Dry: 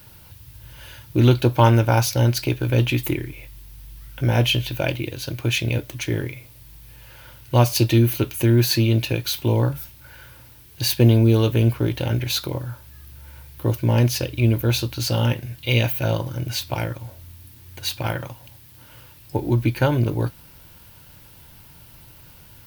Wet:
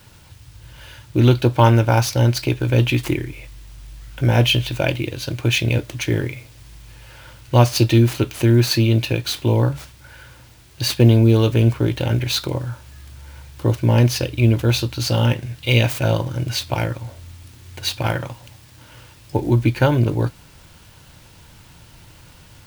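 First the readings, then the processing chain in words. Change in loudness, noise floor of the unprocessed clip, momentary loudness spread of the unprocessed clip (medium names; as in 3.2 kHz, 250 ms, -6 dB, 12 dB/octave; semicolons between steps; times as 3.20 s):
+2.5 dB, -47 dBFS, 13 LU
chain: median filter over 3 samples; in parallel at -2 dB: gain riding within 3 dB 2 s; on the sum: trim -2.5 dB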